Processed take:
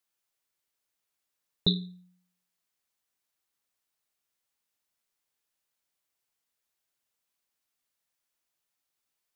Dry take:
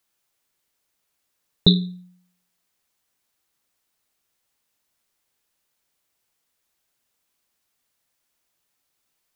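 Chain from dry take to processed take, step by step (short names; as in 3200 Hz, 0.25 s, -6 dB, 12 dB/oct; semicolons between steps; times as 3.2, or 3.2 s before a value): low shelf 470 Hz -3.5 dB; gain -8.5 dB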